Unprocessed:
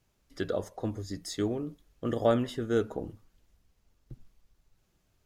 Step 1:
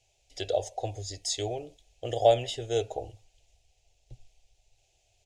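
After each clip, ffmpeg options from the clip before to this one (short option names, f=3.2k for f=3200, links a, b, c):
-af "firequalizer=gain_entry='entry(120,0);entry(180,-24);entry(390,-2);entry(750,11);entry(1100,-20);entry(2500,10);entry(4600,7);entry(7000,11);entry(13000,-10)':delay=0.05:min_phase=1"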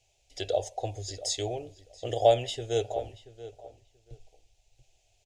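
-filter_complex "[0:a]asplit=2[a][b];[b]adelay=682,lowpass=f=2.4k:p=1,volume=-15dB,asplit=2[c][d];[d]adelay=682,lowpass=f=2.4k:p=1,volume=0.18[e];[a][c][e]amix=inputs=3:normalize=0"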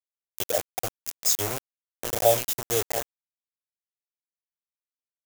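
-af "acrusher=bits=4:mix=0:aa=0.000001,aexciter=amount=3:drive=4.7:freq=5.7k"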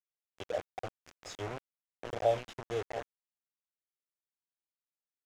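-af "lowpass=2.5k,volume=-7.5dB"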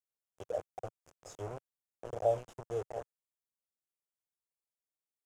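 -af "equalizer=f=125:t=o:w=1:g=3,equalizer=f=250:t=o:w=1:g=-5,equalizer=f=500:t=o:w=1:g=4,equalizer=f=2k:t=o:w=1:g=-9,equalizer=f=4k:t=o:w=1:g=-11,equalizer=f=8k:t=o:w=1:g=4,volume=-3dB"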